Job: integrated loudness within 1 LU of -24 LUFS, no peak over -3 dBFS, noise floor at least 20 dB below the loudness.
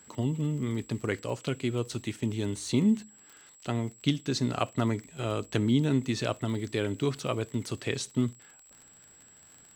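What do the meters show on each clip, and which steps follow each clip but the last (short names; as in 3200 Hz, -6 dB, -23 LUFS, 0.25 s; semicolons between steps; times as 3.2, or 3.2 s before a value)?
ticks 41/s; steady tone 7700 Hz; tone level -54 dBFS; loudness -30.5 LUFS; peak -11.0 dBFS; loudness target -24.0 LUFS
-> de-click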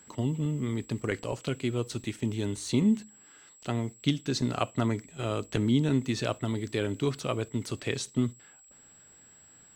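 ticks 0.21/s; steady tone 7700 Hz; tone level -54 dBFS
-> notch 7700 Hz, Q 30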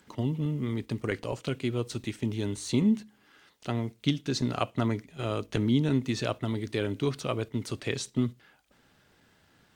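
steady tone none; loudness -30.5 LUFS; peak -11.0 dBFS; loudness target -24.0 LUFS
-> gain +6.5 dB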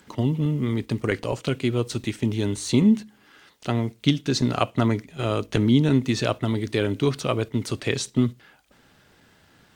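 loudness -24.0 LUFS; peak -4.5 dBFS; noise floor -58 dBFS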